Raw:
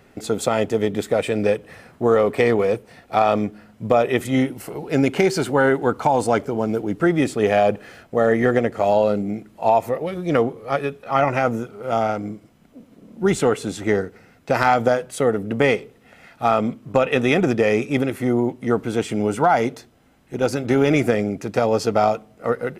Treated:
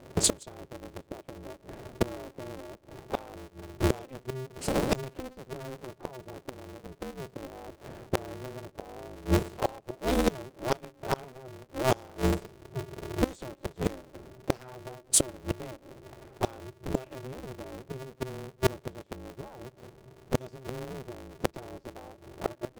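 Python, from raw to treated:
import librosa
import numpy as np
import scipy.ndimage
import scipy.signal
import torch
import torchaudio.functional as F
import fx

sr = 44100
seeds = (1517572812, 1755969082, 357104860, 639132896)

y = fx.graphic_eq_10(x, sr, hz=(125, 250, 500, 1000, 2000, 4000, 8000), db=(-6, 12, 4, -7, -6, 5, 9))
y = fx.gate_flip(y, sr, shuts_db=-10.0, range_db=-28)
y = fx.high_shelf(y, sr, hz=3800.0, db=8.5)
y = fx.env_lowpass(y, sr, base_hz=590.0, full_db=-20.0)
y = y * np.sign(np.sin(2.0 * np.pi * 130.0 * np.arange(len(y)) / sr))
y = y * librosa.db_to_amplitude(-2.0)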